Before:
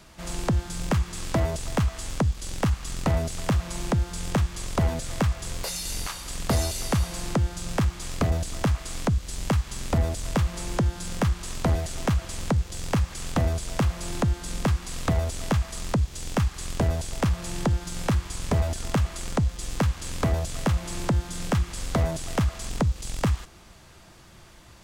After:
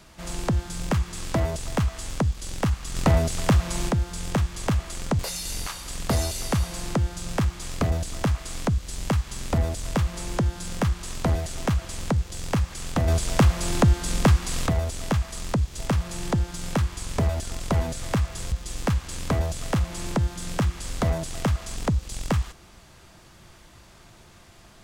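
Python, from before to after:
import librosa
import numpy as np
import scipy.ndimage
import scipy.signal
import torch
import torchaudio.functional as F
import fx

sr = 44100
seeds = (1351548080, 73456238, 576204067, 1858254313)

y = fx.edit(x, sr, fx.clip_gain(start_s=2.95, length_s=0.94, db=4.5),
    fx.swap(start_s=4.67, length_s=0.92, other_s=18.93, other_length_s=0.52),
    fx.clip_gain(start_s=13.48, length_s=1.59, db=6.0),
    fx.cut(start_s=16.19, length_s=0.93), tone=tone)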